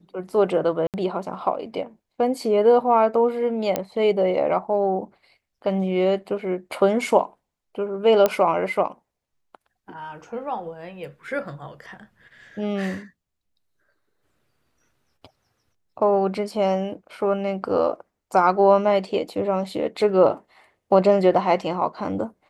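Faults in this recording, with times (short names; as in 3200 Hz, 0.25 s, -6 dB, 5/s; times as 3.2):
0.87–0.94 gap 68 ms
3.76 pop -8 dBFS
8.26 pop -6 dBFS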